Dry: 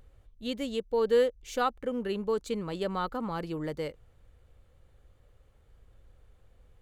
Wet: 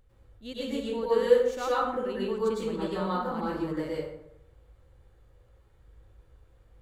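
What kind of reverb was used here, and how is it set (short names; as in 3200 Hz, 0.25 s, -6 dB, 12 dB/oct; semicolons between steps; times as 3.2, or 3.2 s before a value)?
plate-style reverb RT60 0.85 s, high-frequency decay 0.55×, pre-delay 90 ms, DRR -8 dB; gain -7 dB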